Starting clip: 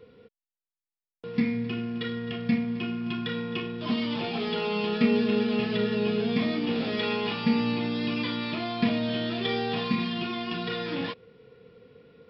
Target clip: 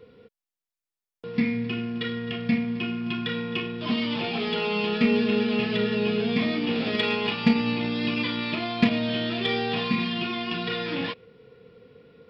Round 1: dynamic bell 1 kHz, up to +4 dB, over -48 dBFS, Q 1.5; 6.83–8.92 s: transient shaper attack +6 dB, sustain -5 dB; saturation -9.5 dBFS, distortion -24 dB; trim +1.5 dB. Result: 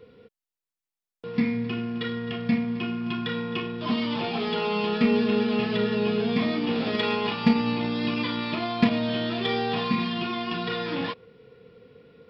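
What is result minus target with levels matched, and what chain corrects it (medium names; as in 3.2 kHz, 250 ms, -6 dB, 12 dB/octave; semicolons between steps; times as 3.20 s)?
1 kHz band +3.0 dB
dynamic bell 2.5 kHz, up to +4 dB, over -48 dBFS, Q 1.5; 6.83–8.92 s: transient shaper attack +6 dB, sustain -5 dB; saturation -9.5 dBFS, distortion -24 dB; trim +1.5 dB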